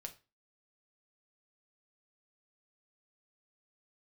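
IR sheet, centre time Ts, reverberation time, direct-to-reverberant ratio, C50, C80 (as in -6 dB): 8 ms, 0.30 s, 3.5 dB, 15.0 dB, 21.5 dB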